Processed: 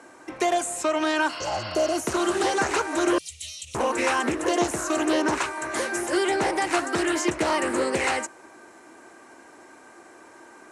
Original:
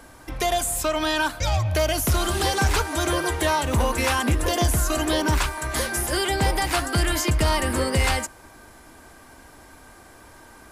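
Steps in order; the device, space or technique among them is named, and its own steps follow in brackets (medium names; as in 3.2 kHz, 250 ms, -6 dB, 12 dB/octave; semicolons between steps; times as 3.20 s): full-range speaker at full volume (loudspeaker Doppler distortion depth 0.34 ms; cabinet simulation 280–8800 Hz, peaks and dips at 350 Hz +7 dB, 3.4 kHz -7 dB, 4.8 kHz -7 dB); 1.32–1.92 s: spectral replace 890–5500 Hz after; 3.18–3.75 s: inverse Chebyshev band-stop 200–1700 Hz, stop band 40 dB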